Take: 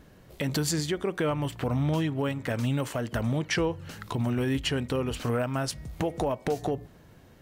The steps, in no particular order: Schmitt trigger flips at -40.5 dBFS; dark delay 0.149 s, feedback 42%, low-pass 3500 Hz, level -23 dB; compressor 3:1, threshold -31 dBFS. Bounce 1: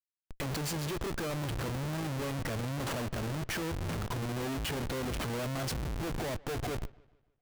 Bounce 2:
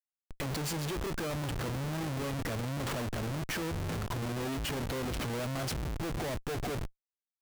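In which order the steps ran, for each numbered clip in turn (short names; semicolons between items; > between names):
compressor > Schmitt trigger > dark delay; compressor > dark delay > Schmitt trigger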